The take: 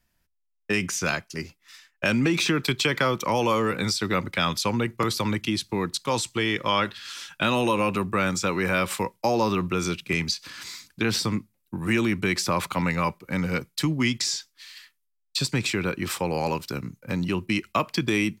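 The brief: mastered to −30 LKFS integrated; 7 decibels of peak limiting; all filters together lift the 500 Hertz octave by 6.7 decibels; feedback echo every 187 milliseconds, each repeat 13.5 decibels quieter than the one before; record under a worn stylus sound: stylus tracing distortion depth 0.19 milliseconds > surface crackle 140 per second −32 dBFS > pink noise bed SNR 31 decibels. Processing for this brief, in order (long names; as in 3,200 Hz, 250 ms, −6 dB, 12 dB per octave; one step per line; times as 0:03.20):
parametric band 500 Hz +8 dB
brickwall limiter −13.5 dBFS
repeating echo 187 ms, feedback 21%, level −13.5 dB
stylus tracing distortion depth 0.19 ms
surface crackle 140 per second −32 dBFS
pink noise bed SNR 31 dB
level −5 dB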